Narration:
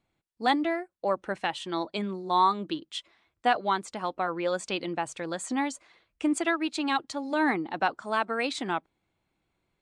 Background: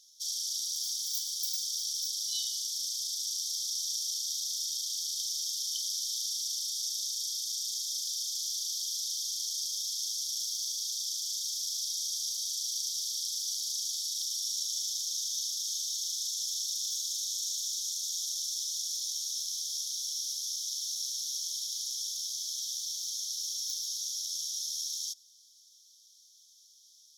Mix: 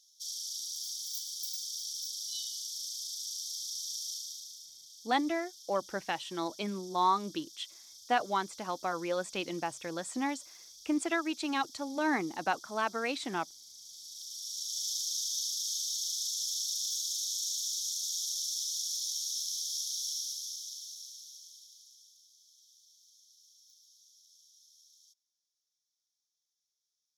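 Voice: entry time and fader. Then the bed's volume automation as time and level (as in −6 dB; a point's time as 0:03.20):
4.65 s, −4.5 dB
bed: 0:04.13 −5 dB
0:04.74 −18.5 dB
0:13.72 −18.5 dB
0:14.90 −0.5 dB
0:20.11 −0.5 dB
0:22.27 −26.5 dB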